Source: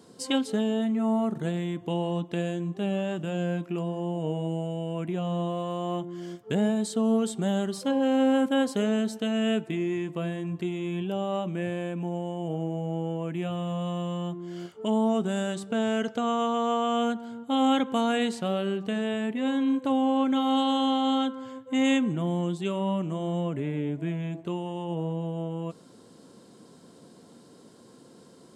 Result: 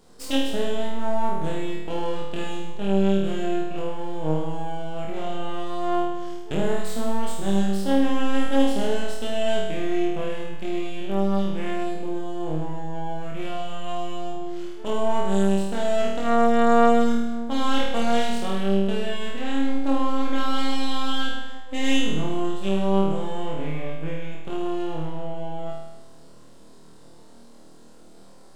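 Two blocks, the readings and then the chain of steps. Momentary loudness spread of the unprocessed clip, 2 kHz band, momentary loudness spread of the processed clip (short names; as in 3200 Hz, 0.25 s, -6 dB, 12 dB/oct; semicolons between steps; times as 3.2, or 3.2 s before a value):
8 LU, +4.0 dB, 11 LU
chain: notches 60/120/180/240 Hz; half-wave rectifier; flutter echo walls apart 4.4 m, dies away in 0.97 s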